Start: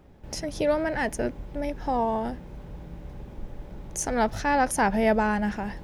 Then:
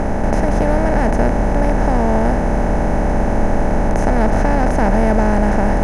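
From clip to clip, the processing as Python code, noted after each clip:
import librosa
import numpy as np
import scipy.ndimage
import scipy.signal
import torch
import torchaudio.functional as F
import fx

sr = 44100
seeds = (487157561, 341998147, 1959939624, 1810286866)

y = fx.bin_compress(x, sr, power=0.2)
y = fx.riaa(y, sr, side='playback')
y = y * librosa.db_to_amplitude(-2.5)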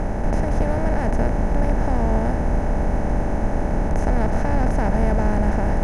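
y = fx.octave_divider(x, sr, octaves=2, level_db=3.0)
y = y * librosa.db_to_amplitude(-7.5)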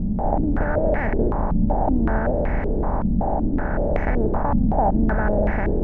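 y = fx.filter_held_lowpass(x, sr, hz=5.3, low_hz=210.0, high_hz=2100.0)
y = y * librosa.db_to_amplitude(-2.5)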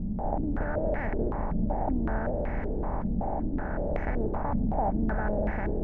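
y = fx.echo_feedback(x, sr, ms=387, feedback_pct=53, wet_db=-15.5)
y = y * librosa.db_to_amplitude(-8.5)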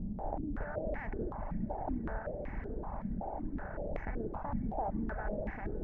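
y = fx.echo_diffused(x, sr, ms=481, feedback_pct=48, wet_db=-12.0)
y = fx.dereverb_blind(y, sr, rt60_s=1.6)
y = y * librosa.db_to_amplitude(-6.5)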